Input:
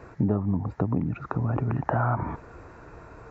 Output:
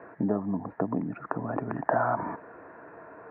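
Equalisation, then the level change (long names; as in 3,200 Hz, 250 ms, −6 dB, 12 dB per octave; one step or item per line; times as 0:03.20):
loudspeaker in its box 200–2,300 Hz, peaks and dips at 200 Hz +4 dB, 290 Hz +5 dB, 460 Hz +4 dB, 660 Hz +9 dB, 1,000 Hz +5 dB, 1,700 Hz +9 dB
−4.5 dB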